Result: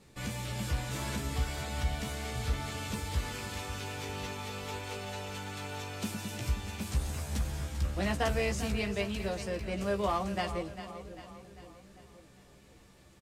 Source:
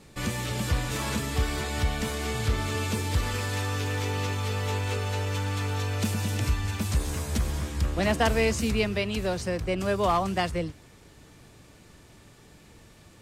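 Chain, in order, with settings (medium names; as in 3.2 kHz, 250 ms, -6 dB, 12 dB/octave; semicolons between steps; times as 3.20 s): doubling 15 ms -5 dB; two-band feedback delay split 510 Hz, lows 528 ms, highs 397 ms, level -11.5 dB; trim -8 dB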